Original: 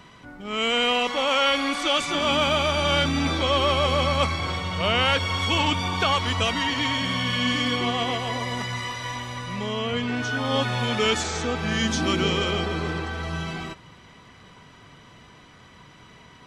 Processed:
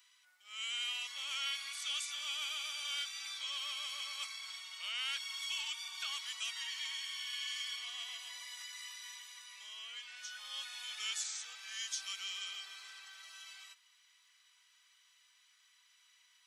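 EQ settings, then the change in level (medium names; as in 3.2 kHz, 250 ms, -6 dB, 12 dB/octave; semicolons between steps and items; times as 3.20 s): high-pass 1.4 kHz 12 dB/octave; differentiator; -6.0 dB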